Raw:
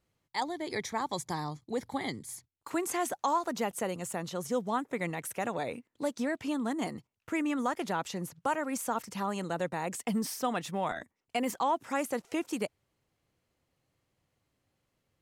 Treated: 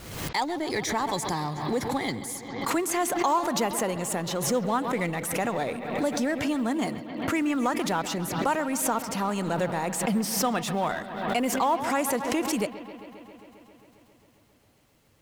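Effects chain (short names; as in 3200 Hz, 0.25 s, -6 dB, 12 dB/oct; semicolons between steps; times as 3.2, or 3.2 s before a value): G.711 law mismatch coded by mu; analogue delay 0.134 s, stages 4096, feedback 79%, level -15 dB; backwards sustainer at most 53 dB/s; gain +3.5 dB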